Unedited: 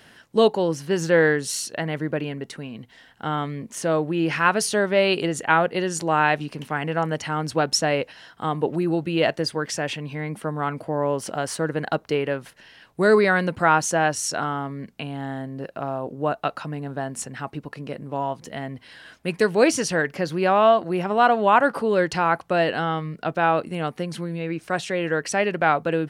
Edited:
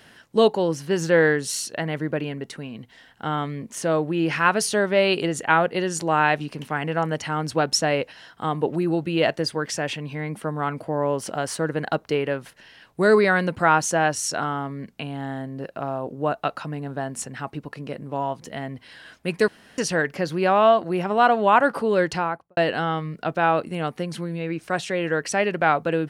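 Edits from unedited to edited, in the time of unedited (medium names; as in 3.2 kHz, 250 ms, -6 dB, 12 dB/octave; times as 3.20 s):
19.48–19.78 s: room tone
22.07–22.57 s: studio fade out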